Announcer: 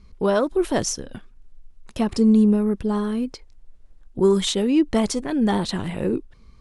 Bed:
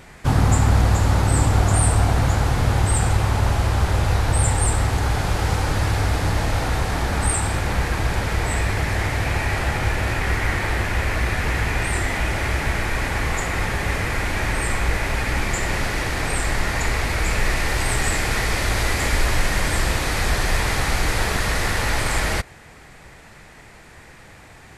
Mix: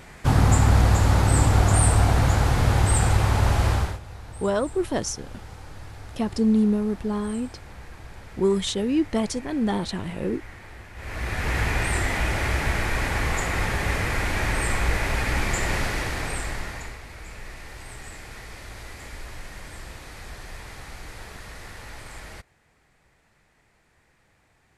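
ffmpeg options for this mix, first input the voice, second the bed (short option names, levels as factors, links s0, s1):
-filter_complex "[0:a]adelay=4200,volume=0.631[s0];[1:a]volume=7.94,afade=t=out:st=3.71:d=0.28:silence=0.1,afade=t=in:st=10.95:d=0.65:silence=0.112202,afade=t=out:st=15.74:d=1.25:silence=0.141254[s1];[s0][s1]amix=inputs=2:normalize=0"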